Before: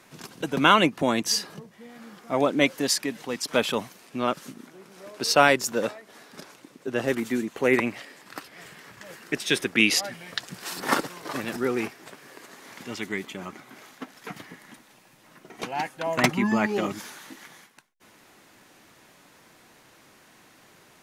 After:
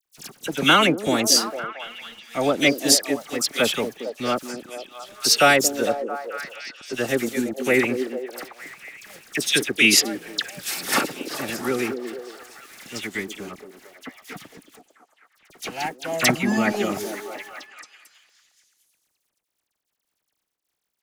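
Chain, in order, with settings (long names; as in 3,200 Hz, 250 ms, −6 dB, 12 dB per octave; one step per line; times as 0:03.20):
high-shelf EQ 3,800 Hz +9 dB
notch filter 1,000 Hz, Q 6
dead-zone distortion −44 dBFS
all-pass dispersion lows, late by 54 ms, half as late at 2,300 Hz
on a send: echo through a band-pass that steps 226 ms, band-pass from 340 Hz, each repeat 0.7 octaves, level −5 dB
on the sum: level +2 dB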